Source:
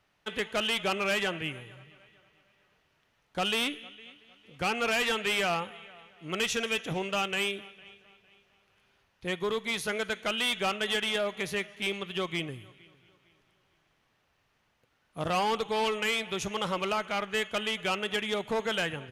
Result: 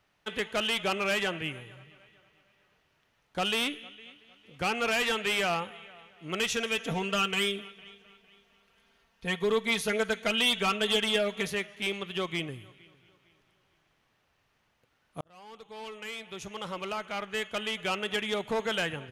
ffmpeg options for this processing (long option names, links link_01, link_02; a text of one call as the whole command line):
ffmpeg -i in.wav -filter_complex "[0:a]asettb=1/sr,asplit=3[link_01][link_02][link_03];[link_01]atrim=end=6.804[link_04];[link_02]atrim=start=6.8:end=11.5,asetpts=PTS-STARTPTS,afade=type=in:duration=0.004:curve=qsin,afade=type=out:start_time=4.696:duration=0.004:curve=qsin,aecho=1:1:4.4:0.81,atrim=end_sample=207270[link_05];[link_03]atrim=start=11.496[link_06];[link_04][link_05]acrossfade=duration=0.004:curve1=hsin:curve2=qsin[link_07];[link_07][link_06]acrossfade=duration=0.004:curve1=qsin:curve2=hsin,asplit=2[link_08][link_09];[link_08]atrim=end=15.21,asetpts=PTS-STARTPTS,afade=type=out:start_time=15.206:duration=0.004:curve=hsin[link_10];[link_09]atrim=start=15.21,asetpts=PTS-STARTPTS,afade=type=in:duration=2.98[link_11];[link_10][link_11]concat=n=2:v=0:a=1" out.wav